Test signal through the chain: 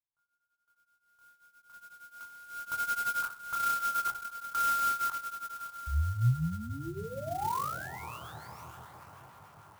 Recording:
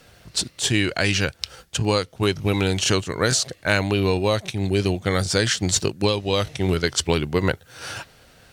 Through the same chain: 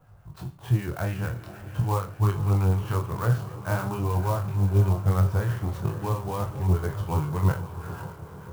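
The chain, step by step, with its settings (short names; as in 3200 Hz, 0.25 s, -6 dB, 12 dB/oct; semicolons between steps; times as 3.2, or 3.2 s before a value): spectral trails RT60 0.34 s; tape spacing loss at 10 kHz 42 dB; on a send: diffused feedback echo 0.537 s, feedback 63%, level -12 dB; on the sum: harmonic tremolo 6.7 Hz, depth 50%, crossover 1100 Hz; chorus 0.42 Hz, delay 20 ms, depth 6.1 ms; graphic EQ 125/250/500/1000/2000/4000 Hz +8/-11/-7/+8/-8/-11 dB; clock jitter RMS 0.033 ms; gain +3 dB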